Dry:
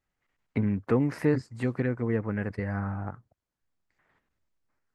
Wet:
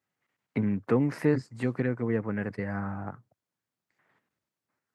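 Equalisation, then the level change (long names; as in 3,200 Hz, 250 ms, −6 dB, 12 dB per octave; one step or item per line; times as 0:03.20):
high-pass filter 110 Hz 24 dB per octave
0.0 dB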